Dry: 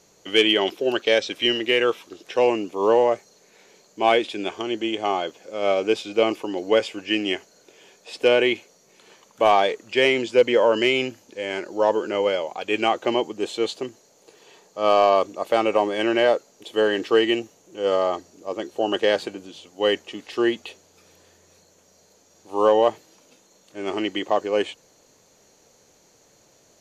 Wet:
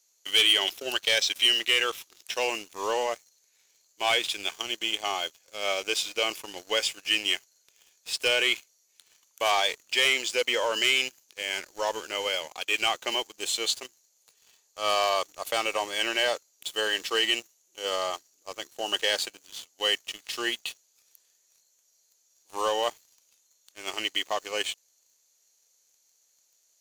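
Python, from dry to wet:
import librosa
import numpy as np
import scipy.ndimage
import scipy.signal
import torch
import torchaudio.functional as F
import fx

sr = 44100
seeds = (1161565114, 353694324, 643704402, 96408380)

y = np.diff(x, prepend=0.0)
y = fx.leveller(y, sr, passes=3)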